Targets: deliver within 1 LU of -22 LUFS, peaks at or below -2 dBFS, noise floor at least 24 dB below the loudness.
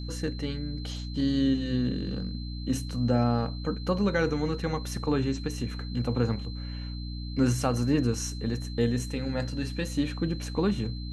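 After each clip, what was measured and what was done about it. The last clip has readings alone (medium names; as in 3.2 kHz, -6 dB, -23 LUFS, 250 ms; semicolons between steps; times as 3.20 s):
hum 60 Hz; highest harmonic 300 Hz; hum level -32 dBFS; steady tone 4.1 kHz; tone level -45 dBFS; loudness -29.5 LUFS; peak level -11.5 dBFS; loudness target -22.0 LUFS
-> de-hum 60 Hz, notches 5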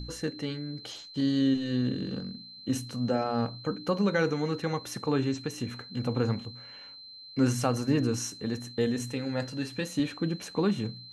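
hum not found; steady tone 4.1 kHz; tone level -45 dBFS
-> band-stop 4.1 kHz, Q 30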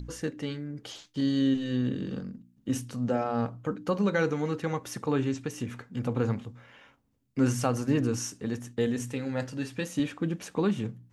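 steady tone not found; loudness -30.5 LUFS; peak level -12.0 dBFS; loudness target -22.0 LUFS
-> trim +8.5 dB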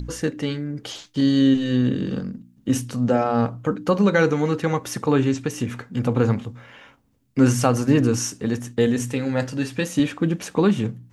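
loudness -22.0 LUFS; peak level -3.5 dBFS; noise floor -57 dBFS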